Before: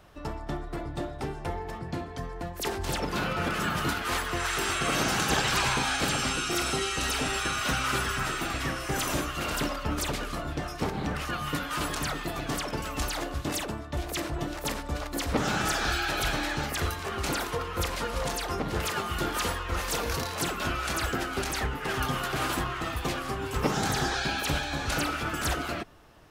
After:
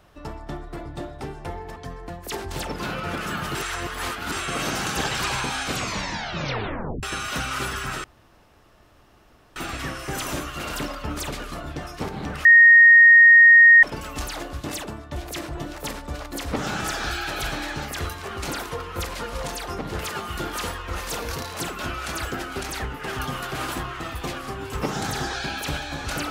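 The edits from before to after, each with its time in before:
0:01.76–0:02.09: remove
0:03.88–0:04.65: reverse
0:05.98: tape stop 1.38 s
0:08.37: splice in room tone 1.52 s
0:11.26–0:12.64: beep over 1,860 Hz −7.5 dBFS

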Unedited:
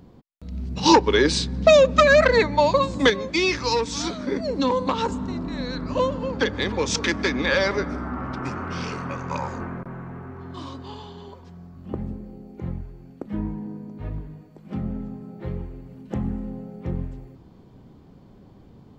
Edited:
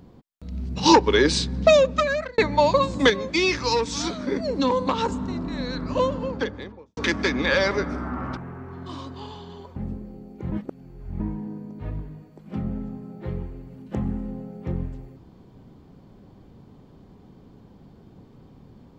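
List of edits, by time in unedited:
0:01.59–0:02.38: fade out
0:06.09–0:06.97: fade out and dull
0:08.37–0:10.05: remove
0:11.44–0:11.95: remove
0:12.71–0:13.39: reverse

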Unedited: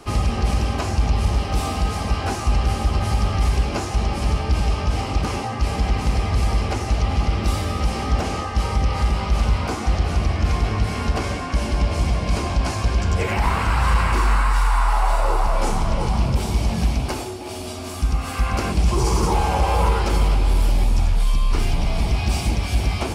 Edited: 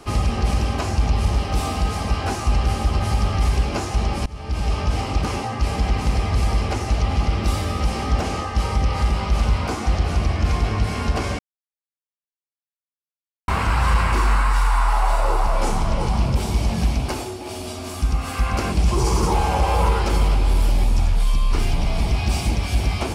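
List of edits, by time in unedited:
0:04.26–0:04.76: fade in, from −24 dB
0:11.39–0:13.48: silence

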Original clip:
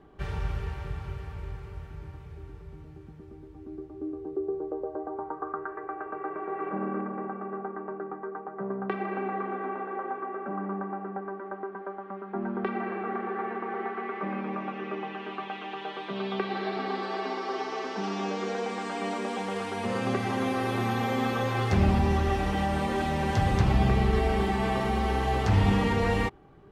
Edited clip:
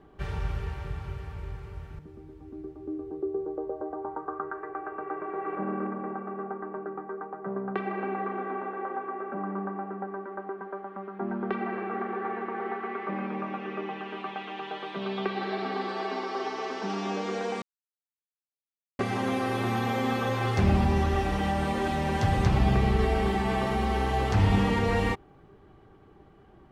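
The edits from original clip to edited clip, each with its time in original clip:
0:01.99–0:03.13: remove
0:18.76–0:20.13: silence

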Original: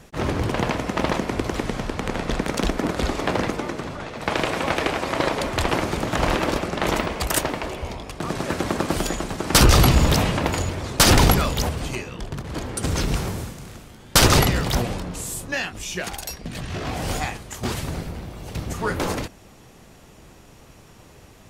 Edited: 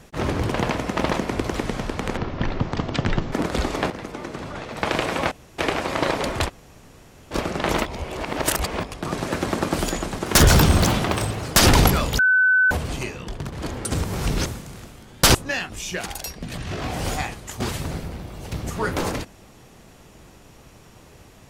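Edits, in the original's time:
0:02.17–0:02.77: play speed 52%
0:03.35–0:04.01: fade in, from −14 dB
0:04.76: splice in room tone 0.27 s
0:05.65–0:06.51: fill with room tone, crossfade 0.06 s
0:07.03–0:08.01: reverse
0:09.43–0:11.02: play speed 120%
0:11.63: insert tone 1,510 Hz −13.5 dBFS 0.52 s
0:12.96–0:13.38: reverse
0:14.27–0:15.38: remove

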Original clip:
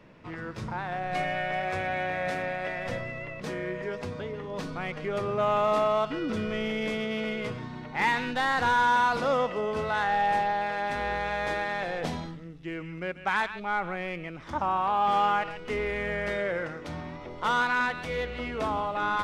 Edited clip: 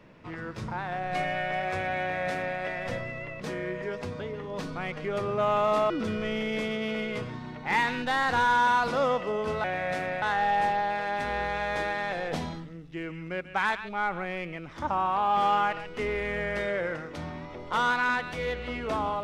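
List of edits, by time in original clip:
0:02.00–0:02.58: duplicate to 0:09.93
0:05.90–0:06.19: remove

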